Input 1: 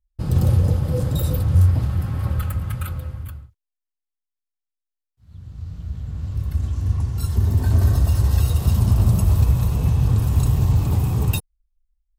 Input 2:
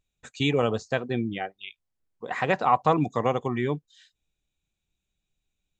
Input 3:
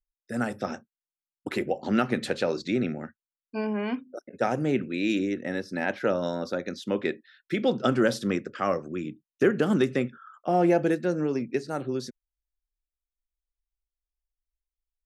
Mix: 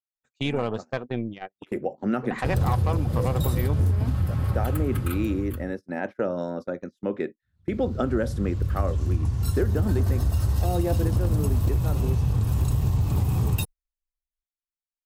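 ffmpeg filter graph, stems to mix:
ffmpeg -i stem1.wav -i stem2.wav -i stem3.wav -filter_complex "[0:a]aeval=exprs='0.335*(abs(mod(val(0)/0.335+3,4)-2)-1)':channel_layout=same,adelay=2250,volume=0dB[link_01];[1:a]agate=range=-33dB:threshold=-48dB:ratio=3:detection=peak,highshelf=frequency=2900:gain=-6,aeval=exprs='0.398*(cos(1*acos(clip(val(0)/0.398,-1,1)))-cos(1*PI/2))+0.02*(cos(4*acos(clip(val(0)/0.398,-1,1)))-cos(4*PI/2))+0.00316*(cos(5*acos(clip(val(0)/0.398,-1,1)))-cos(5*PI/2))+0.0447*(cos(6*acos(clip(val(0)/0.398,-1,1)))-cos(6*PI/2))':channel_layout=same,volume=-2.5dB,asplit=2[link_02][link_03];[2:a]equalizer=frequency=3900:width_type=o:width=2.1:gain=-12.5,adelay=150,volume=0.5dB[link_04];[link_03]apad=whole_len=670693[link_05];[link_04][link_05]sidechaincompress=threshold=-28dB:ratio=16:attack=16:release=737[link_06];[link_01][link_02][link_06]amix=inputs=3:normalize=0,agate=range=-23dB:threshold=-32dB:ratio=16:detection=peak,acompressor=threshold=-19dB:ratio=6" out.wav

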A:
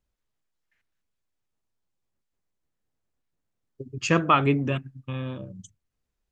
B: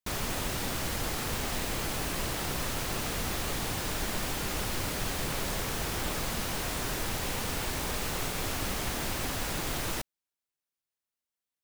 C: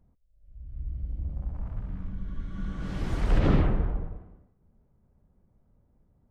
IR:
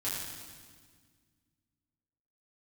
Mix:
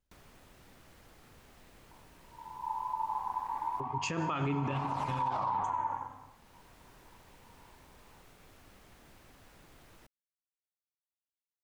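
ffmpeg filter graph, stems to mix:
-filter_complex "[0:a]volume=-3.5dB,asplit=3[link_01][link_02][link_03];[link_02]volume=-13.5dB[link_04];[1:a]acrossover=split=260|2900[link_05][link_06][link_07];[link_05]acompressor=threshold=-40dB:ratio=4[link_08];[link_06]acompressor=threshold=-42dB:ratio=4[link_09];[link_07]acompressor=threshold=-49dB:ratio=4[link_10];[link_08][link_09][link_10]amix=inputs=3:normalize=0,adelay=50,volume=-18.5dB[link_11];[2:a]acrossover=split=260|3000[link_12][link_13][link_14];[link_13]acompressor=threshold=-38dB:ratio=6[link_15];[link_12][link_15][link_14]amix=inputs=3:normalize=0,aeval=exprs='val(0)*sin(2*PI*940*n/s)':channel_layout=same,aphaser=in_gain=1:out_gain=1:delay=3.8:decay=0.39:speed=0.35:type=sinusoidal,adelay=1900,volume=-0.5dB[link_16];[link_03]apad=whole_len=515116[link_17];[link_11][link_17]sidechaincompress=threshold=-53dB:ratio=8:attack=33:release=914[link_18];[3:a]atrim=start_sample=2205[link_19];[link_04][link_19]afir=irnorm=-1:irlink=0[link_20];[link_01][link_18][link_16][link_20]amix=inputs=4:normalize=0,alimiter=level_in=0.5dB:limit=-24dB:level=0:latency=1:release=75,volume=-0.5dB"

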